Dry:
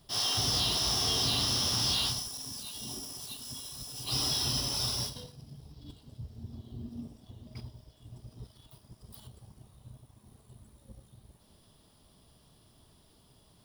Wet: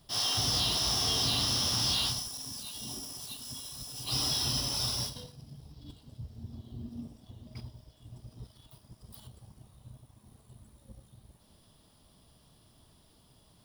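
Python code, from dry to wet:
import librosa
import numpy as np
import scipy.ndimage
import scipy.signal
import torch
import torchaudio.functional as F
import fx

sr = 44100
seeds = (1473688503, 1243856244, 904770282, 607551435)

y = fx.peak_eq(x, sr, hz=400.0, db=-3.5, octaves=0.26)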